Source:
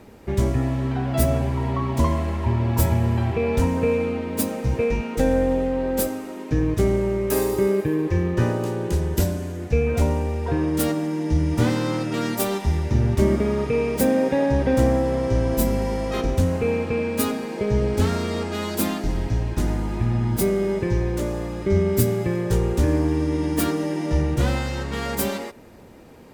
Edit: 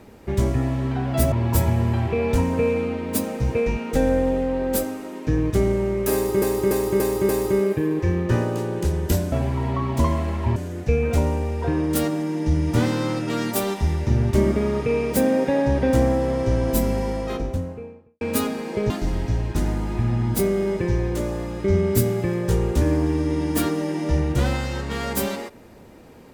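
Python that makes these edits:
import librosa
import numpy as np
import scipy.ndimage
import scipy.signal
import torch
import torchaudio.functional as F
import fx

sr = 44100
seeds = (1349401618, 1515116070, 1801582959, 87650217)

y = fx.studio_fade_out(x, sr, start_s=15.76, length_s=1.29)
y = fx.edit(y, sr, fx.move(start_s=1.32, length_s=1.24, to_s=9.4),
    fx.repeat(start_s=7.37, length_s=0.29, count=5),
    fx.cut(start_s=17.74, length_s=1.18), tone=tone)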